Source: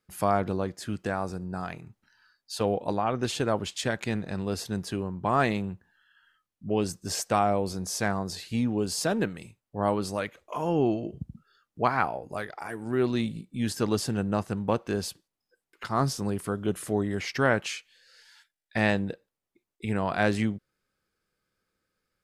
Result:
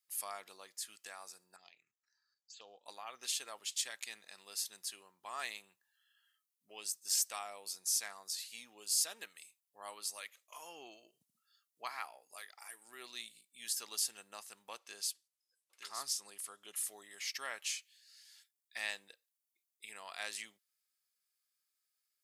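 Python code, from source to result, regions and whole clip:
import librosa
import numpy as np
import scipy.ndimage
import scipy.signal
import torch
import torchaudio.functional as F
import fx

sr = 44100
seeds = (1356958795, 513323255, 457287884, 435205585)

y = fx.chain(x, sr, fx.env_phaser(low_hz=460.0, high_hz=2100.0, full_db=-28.0),
    fx.level_steps(step_db=10),
    fx.brickwall_lowpass(high_hz=7800.0), at=(1.56, 2.86))
y = fx.chain(y, sr, fx.lowpass(hz=11000.0, slope=12),
    fx.echo_single(ms=917, db=-8.0), at=(14.78, 16.76))
y = fx.highpass(y, sr, hz=840.0, slope=6)
y = np.diff(y, prepend=0.0)
y = fx.notch(y, sr, hz=1500.0, q=9.3)
y = y * 10.0 ** (1.0 / 20.0)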